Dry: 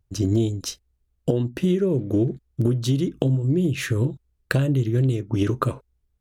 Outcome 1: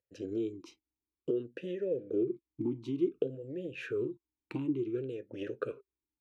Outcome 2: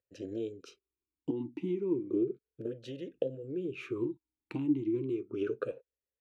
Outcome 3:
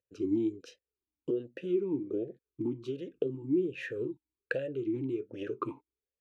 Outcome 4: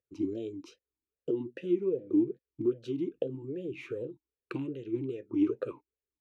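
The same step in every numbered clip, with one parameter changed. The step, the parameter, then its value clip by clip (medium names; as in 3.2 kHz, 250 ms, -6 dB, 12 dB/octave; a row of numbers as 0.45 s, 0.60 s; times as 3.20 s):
talking filter, rate: 0.56 Hz, 0.33 Hz, 1.3 Hz, 2.5 Hz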